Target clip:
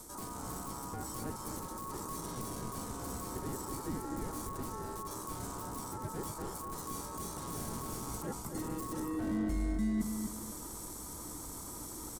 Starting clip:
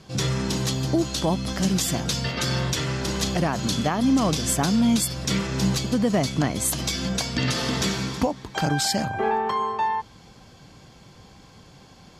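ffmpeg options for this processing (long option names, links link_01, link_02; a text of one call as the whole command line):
ffmpeg -i in.wav -filter_complex "[0:a]aemphasis=mode=production:type=75fm,aeval=exprs='1.33*(cos(1*acos(clip(val(0)/1.33,-1,1)))-cos(1*PI/2))+0.596*(cos(6*acos(clip(val(0)/1.33,-1,1)))-cos(6*PI/2))':channel_layout=same,acrossover=split=4300[link_01][link_02];[link_02]acompressor=threshold=-36dB:ratio=4:attack=1:release=60[link_03];[link_01][link_03]amix=inputs=2:normalize=0,asoftclip=type=tanh:threshold=-27.5dB,aeval=exprs='val(0)*sin(2*PI*1100*n/s)':channel_layout=same,areverse,acompressor=threshold=-42dB:ratio=10,areverse,firequalizer=gain_entry='entry(300,0);entry(590,-13);entry(1400,-21);entry(2600,-28);entry(8400,-3)':delay=0.05:min_phase=1,asplit=2[link_04][link_05];[link_05]adelay=249,lowpass=frequency=1900:poles=1,volume=-5.5dB,asplit=2[link_06][link_07];[link_07]adelay=249,lowpass=frequency=1900:poles=1,volume=0.33,asplit=2[link_08][link_09];[link_09]adelay=249,lowpass=frequency=1900:poles=1,volume=0.33,asplit=2[link_10][link_11];[link_11]adelay=249,lowpass=frequency=1900:poles=1,volume=0.33[link_12];[link_06][link_08][link_10][link_12]amix=inputs=4:normalize=0[link_13];[link_04][link_13]amix=inputs=2:normalize=0,volume=15.5dB" out.wav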